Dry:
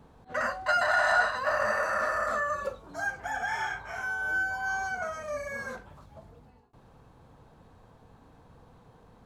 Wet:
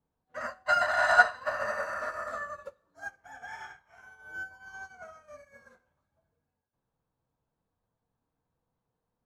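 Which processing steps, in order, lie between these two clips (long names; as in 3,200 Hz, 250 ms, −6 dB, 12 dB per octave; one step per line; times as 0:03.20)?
on a send at −5.5 dB: convolution reverb, pre-delay 3 ms
on the sum: expander for the loud parts 2.5 to 1, over −41 dBFS
level +5 dB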